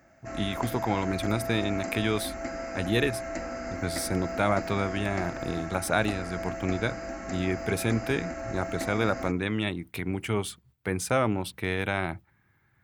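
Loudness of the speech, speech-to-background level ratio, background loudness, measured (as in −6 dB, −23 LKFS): −30.0 LKFS, 6.0 dB, −36.0 LKFS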